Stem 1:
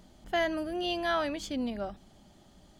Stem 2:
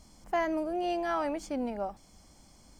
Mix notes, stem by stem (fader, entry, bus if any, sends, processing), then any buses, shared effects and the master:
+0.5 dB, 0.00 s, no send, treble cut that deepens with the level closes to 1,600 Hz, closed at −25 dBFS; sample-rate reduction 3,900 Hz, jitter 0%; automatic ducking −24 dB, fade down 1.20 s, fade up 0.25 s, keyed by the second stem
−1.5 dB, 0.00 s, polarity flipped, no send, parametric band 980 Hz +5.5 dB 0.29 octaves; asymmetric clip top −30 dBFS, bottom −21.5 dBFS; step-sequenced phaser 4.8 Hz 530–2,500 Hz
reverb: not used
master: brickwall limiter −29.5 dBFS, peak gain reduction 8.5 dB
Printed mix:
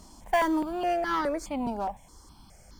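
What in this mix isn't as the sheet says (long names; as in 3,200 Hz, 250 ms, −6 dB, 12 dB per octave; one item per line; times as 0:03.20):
stem 2 −1.5 dB → +7.0 dB
master: missing brickwall limiter −29.5 dBFS, peak gain reduction 8.5 dB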